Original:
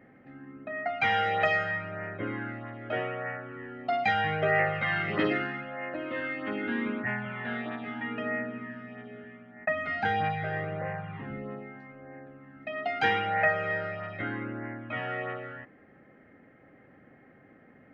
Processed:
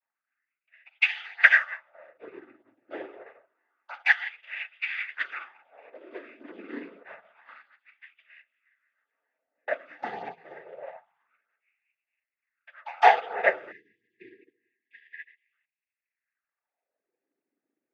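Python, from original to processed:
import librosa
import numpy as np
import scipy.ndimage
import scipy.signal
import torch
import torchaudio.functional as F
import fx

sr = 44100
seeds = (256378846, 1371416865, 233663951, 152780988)

y = fx.noise_vocoder(x, sr, seeds[0], bands=16)
y = fx.spec_erase(y, sr, start_s=13.72, length_s=1.81, low_hz=490.0, high_hz=1600.0)
y = fx.filter_lfo_highpass(y, sr, shape='sine', hz=0.27, low_hz=300.0, high_hz=2600.0, q=3.0)
y = fx.upward_expand(y, sr, threshold_db=-42.0, expansion=2.5)
y = F.gain(torch.from_numpy(y), 5.5).numpy()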